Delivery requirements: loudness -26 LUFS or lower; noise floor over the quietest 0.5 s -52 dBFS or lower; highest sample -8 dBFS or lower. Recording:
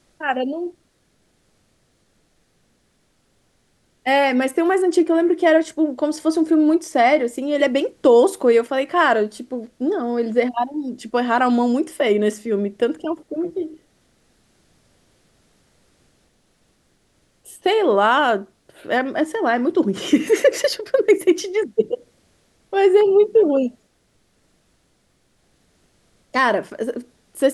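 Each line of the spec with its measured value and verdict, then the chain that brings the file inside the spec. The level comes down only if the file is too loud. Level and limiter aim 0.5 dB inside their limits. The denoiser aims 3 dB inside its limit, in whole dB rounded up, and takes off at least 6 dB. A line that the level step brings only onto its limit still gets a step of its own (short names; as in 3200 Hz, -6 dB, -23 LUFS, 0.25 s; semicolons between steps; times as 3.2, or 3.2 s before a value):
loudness -19.0 LUFS: fail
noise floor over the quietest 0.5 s -63 dBFS: OK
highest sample -4.5 dBFS: fail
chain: gain -7.5 dB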